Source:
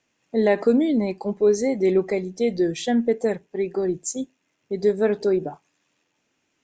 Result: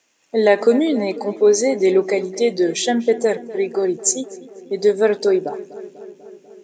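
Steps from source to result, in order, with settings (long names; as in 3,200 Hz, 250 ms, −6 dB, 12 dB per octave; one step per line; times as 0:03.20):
high-pass filter 82 Hz
bass and treble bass −12 dB, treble +6 dB
on a send: feedback echo with a low-pass in the loop 246 ms, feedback 71%, low-pass 2,300 Hz, level −16.5 dB
on the sum: level +6.5 dB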